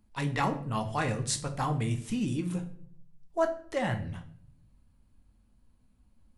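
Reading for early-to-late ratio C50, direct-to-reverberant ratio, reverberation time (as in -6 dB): 12.0 dB, 4.5 dB, 0.60 s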